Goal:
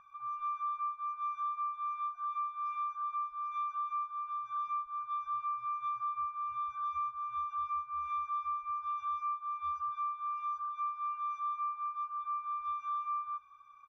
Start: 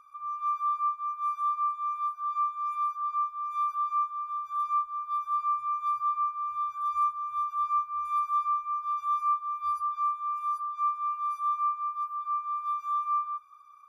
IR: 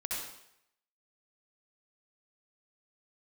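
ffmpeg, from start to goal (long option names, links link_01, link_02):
-af "lowpass=3100,aecho=1:1:1.2:0.87,acompressor=threshold=-33dB:ratio=6"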